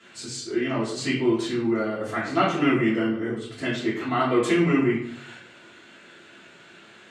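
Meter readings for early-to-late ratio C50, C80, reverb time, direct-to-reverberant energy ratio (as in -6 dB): 4.0 dB, 7.5 dB, 0.65 s, -11.0 dB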